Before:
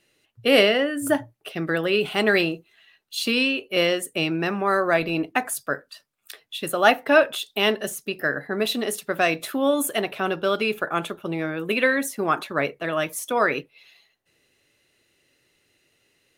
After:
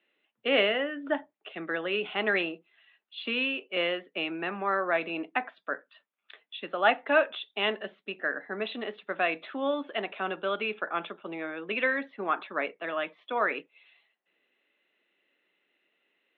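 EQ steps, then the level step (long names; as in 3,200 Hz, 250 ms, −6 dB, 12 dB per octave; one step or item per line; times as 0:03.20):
Chebyshev band-pass filter 180–3,600 Hz, order 5
high-frequency loss of the air 190 metres
low-shelf EQ 460 Hz −10 dB
−2.5 dB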